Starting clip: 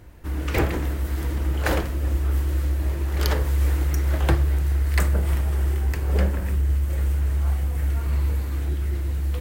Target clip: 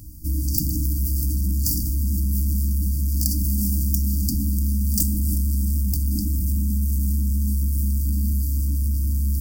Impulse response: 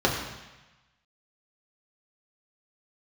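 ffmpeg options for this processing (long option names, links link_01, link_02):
-af "aeval=exprs='0.473*sin(PI/2*5.01*val(0)/0.473)':channel_layout=same,afftfilt=real='re*(1-between(b*sr/4096,320,4500))':imag='im*(1-between(b*sr/4096,320,4500))':win_size=4096:overlap=0.75,aemphasis=mode=production:type=50kf,volume=-12dB"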